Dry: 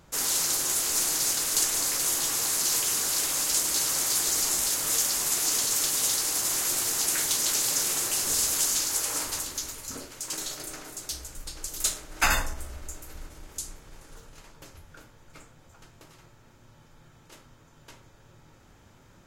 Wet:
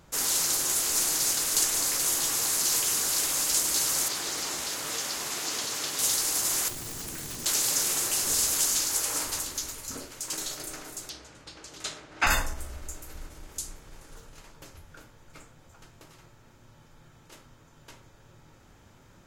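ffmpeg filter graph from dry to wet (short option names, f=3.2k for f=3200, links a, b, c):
-filter_complex "[0:a]asettb=1/sr,asplit=3[a][b][c];[a]atrim=end=4.084[d];[b]atrim=start=4.08:end=5.99,asetpts=PTS-STARTPTS,afade=t=in:d=0.004:c=qsin,afade=t=out:st=1.906:d=0.004:c=qsin,acrossover=split=5100[e][f];[f]acompressor=threshold=-37dB:ratio=4:attack=1:release=60[g];[e][g]amix=inputs=2:normalize=0,highpass=f=120:p=1[h];[c]atrim=start=5.986[i];[d][h]acrossfade=d=0.004:c1=hsin:c2=qsin[j];[j][i]acrossfade=d=0.004:c1=qsin:c2=hsin,asettb=1/sr,asplit=3[k][l][m];[k]atrim=end=6.684[n];[l]atrim=start=6.68:end=7.46,asetpts=PTS-STARTPTS,afade=t=in:d=0.004:c=qsin,afade=t=out:st=0.776:d=0.004:c=qsin,lowshelf=f=360:g=10.5,acrossover=split=290|2100[o][p][q];[o]acompressor=threshold=-39dB:ratio=4[r];[p]acompressor=threshold=-49dB:ratio=4[s];[q]acompressor=threshold=-39dB:ratio=4[t];[r][s][t]amix=inputs=3:normalize=0,aeval=exprs='(mod(28.2*val(0)+1,2)-1)/28.2':c=same[u];[m]atrim=start=7.456[v];[n][u]acrossfade=d=0.004:c1=hsin:c2=qsin[w];[w][v]acrossfade=d=0.004:c1=qsin:c2=hsin,asettb=1/sr,asplit=3[x][y][z];[x]atrim=end=11.094[aa];[y]atrim=start=11.09:end=12.27,asetpts=PTS-STARTPTS,afade=t=in:d=0.004:c=qsin,afade=t=out:st=1.176:d=0.004:c=qsin,asubboost=boost=2.5:cutoff=170,highpass=130,lowpass=3.9k[ab];[z]atrim=start=12.266[ac];[aa][ab]acrossfade=d=0.004:c1=hsin:c2=qsin[ad];[ad][ac]acrossfade=d=0.004:c1=qsin:c2=hsin"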